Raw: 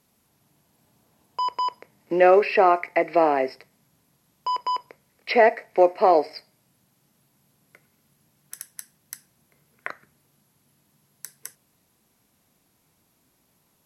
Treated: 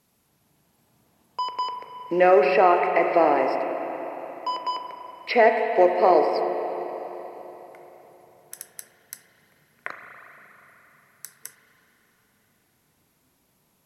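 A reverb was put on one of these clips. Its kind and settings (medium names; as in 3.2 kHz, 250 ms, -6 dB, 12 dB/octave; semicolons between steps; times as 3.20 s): spring tank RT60 3.9 s, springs 34/39/59 ms, chirp 55 ms, DRR 3.5 dB; trim -1 dB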